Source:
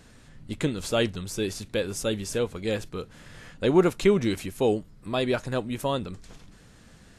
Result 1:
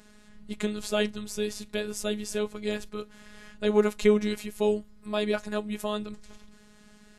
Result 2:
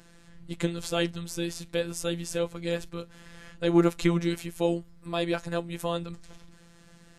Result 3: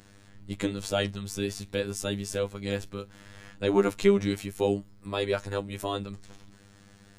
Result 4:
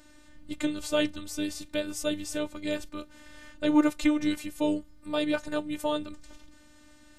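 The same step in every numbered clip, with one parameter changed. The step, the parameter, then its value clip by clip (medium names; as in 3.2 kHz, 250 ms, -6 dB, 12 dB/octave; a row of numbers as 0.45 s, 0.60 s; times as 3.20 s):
robot voice, frequency: 210 Hz, 170 Hz, 100 Hz, 300 Hz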